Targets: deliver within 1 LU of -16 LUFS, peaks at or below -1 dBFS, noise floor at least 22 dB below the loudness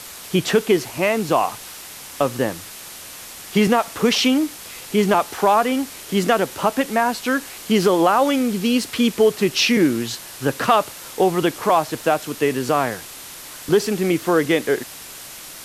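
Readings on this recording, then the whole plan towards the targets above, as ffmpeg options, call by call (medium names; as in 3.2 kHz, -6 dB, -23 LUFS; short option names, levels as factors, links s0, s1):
noise floor -37 dBFS; noise floor target -42 dBFS; loudness -19.5 LUFS; peak level -3.0 dBFS; loudness target -16.0 LUFS
-> -af "afftdn=nr=6:nf=-37"
-af "volume=1.5,alimiter=limit=0.891:level=0:latency=1"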